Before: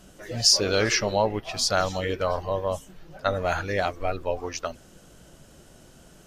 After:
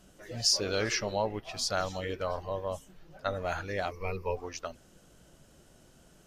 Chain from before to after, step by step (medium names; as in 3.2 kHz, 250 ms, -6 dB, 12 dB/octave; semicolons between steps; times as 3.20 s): 3.91–4.36 s: rippled EQ curve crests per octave 0.84, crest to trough 16 dB; short-mantissa float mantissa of 8-bit; trim -7.5 dB